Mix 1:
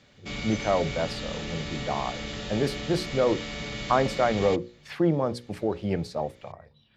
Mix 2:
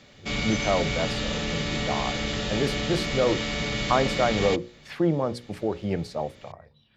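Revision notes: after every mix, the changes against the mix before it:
background +6.5 dB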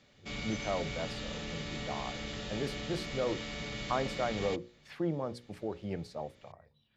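speech -10.0 dB; background -11.5 dB

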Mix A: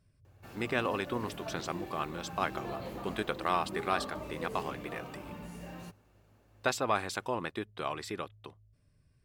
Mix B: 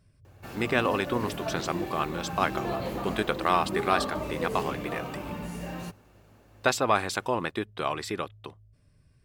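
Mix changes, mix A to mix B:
speech +6.0 dB; background +8.5 dB

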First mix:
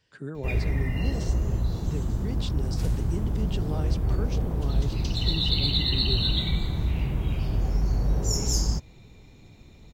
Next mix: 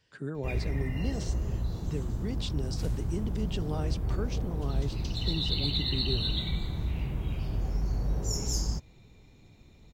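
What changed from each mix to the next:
background -5.5 dB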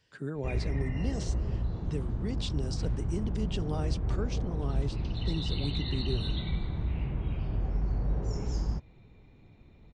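background: add low-pass 2.5 kHz 12 dB/octave

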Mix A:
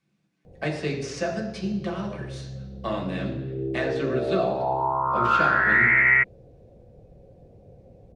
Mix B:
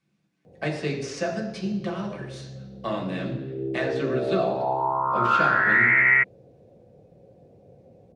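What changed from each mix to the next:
background: add high-pass 130 Hz 12 dB/octave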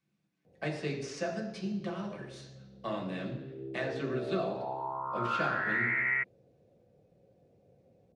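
speech -7.0 dB; background -12.0 dB

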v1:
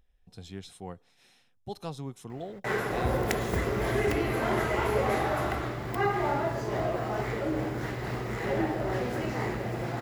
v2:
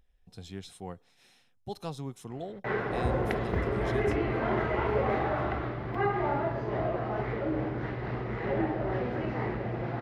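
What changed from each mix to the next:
background: add distance through air 320 m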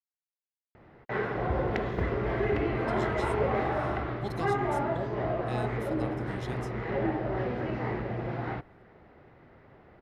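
speech: entry +2.55 s; background: entry -1.55 s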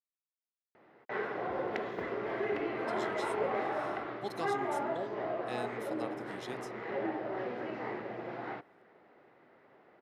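background -4.0 dB; master: add high-pass 290 Hz 12 dB/octave

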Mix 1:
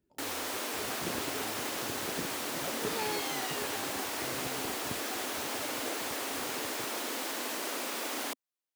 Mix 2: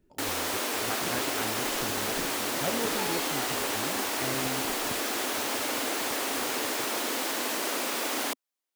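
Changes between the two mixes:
speech +10.0 dB; first sound +5.5 dB; master: remove high-pass 55 Hz

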